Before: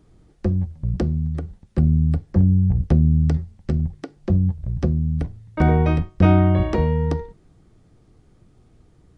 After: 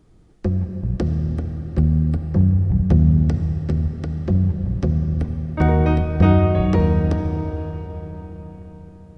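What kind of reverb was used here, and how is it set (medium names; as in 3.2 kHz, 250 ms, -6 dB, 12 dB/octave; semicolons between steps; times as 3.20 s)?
algorithmic reverb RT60 4.9 s, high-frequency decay 0.75×, pre-delay 30 ms, DRR 5.5 dB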